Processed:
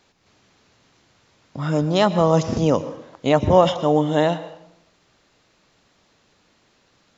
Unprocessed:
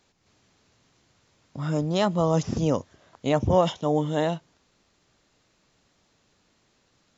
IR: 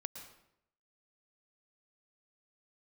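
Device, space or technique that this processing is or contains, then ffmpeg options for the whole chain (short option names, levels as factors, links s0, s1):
filtered reverb send: -filter_complex "[0:a]asplit=2[s0][s1];[s1]highpass=f=320:p=1,lowpass=6100[s2];[1:a]atrim=start_sample=2205[s3];[s2][s3]afir=irnorm=-1:irlink=0,volume=1[s4];[s0][s4]amix=inputs=2:normalize=0,volume=1.33"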